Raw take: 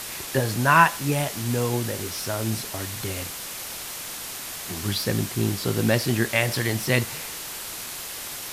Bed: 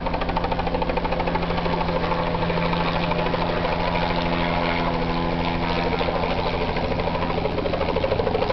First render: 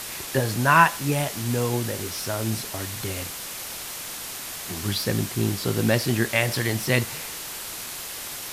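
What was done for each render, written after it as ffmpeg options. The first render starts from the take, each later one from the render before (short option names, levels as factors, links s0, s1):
-af anull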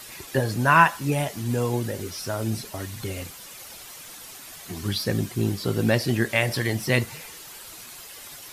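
-af "afftdn=nr=10:nf=-35"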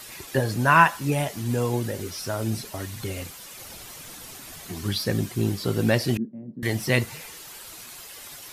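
-filter_complex "[0:a]asettb=1/sr,asplit=3[s0][s1][s2];[s0]atrim=end=3.574[s3];[s1]atrim=start=3.57:end=4.67,asetpts=PTS-STARTPTS,afade=t=in:d=0.004:c=qsin,afade=t=out:st=1.096:d=0.004:c=qsin,lowshelf=f=370:g=8.5[s4];[s2]atrim=start=4.666[s5];[s3][s4]acrossfade=d=0.004:c1=hsin:c2=qsin[s6];[s6][s5]acrossfade=d=0.004:c1=qsin:c2=hsin,asettb=1/sr,asplit=3[s7][s8][s9];[s7]atrim=end=6.174[s10];[s8]atrim=start=6.17:end=6.63,asetpts=PTS-STARTPTS,afade=t=in:d=0.004:c=qsin,afade=t=out:st=0.456:d=0.004:c=qsin,asuperpass=centerf=220:order=4:qfactor=2.1[s11];[s9]atrim=start=6.626[s12];[s10][s11]acrossfade=d=0.004:c1=hsin:c2=qsin[s13];[s13][s12]acrossfade=d=0.004:c1=qsin:c2=hsin"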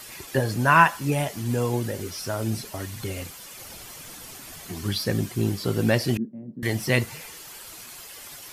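-af "bandreject=f=3800:w=26"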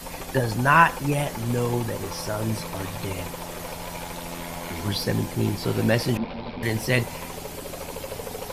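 -filter_complex "[1:a]volume=0.224[s0];[0:a][s0]amix=inputs=2:normalize=0"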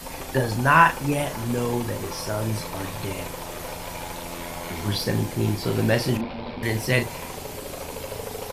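-filter_complex "[0:a]asplit=2[s0][s1];[s1]adelay=38,volume=0.398[s2];[s0][s2]amix=inputs=2:normalize=0,asplit=2[s3][s4];[s4]adelay=583.1,volume=0.0355,highshelf=f=4000:g=-13.1[s5];[s3][s5]amix=inputs=2:normalize=0"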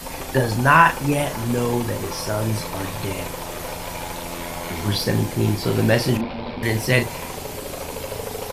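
-af "volume=1.5,alimiter=limit=0.794:level=0:latency=1"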